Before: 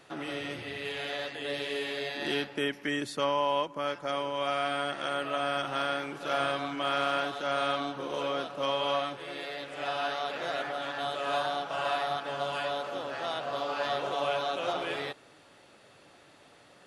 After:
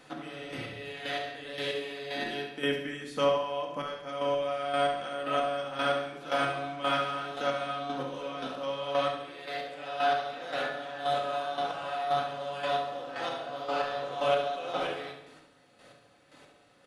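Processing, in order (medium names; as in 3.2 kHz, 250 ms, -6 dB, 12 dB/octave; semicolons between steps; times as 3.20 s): square tremolo 1.9 Hz, depth 65%, duty 25%; on a send: feedback delay 69 ms, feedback 51%, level -8.5 dB; on the sum: simulated room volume 870 m³, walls furnished, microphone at 2 m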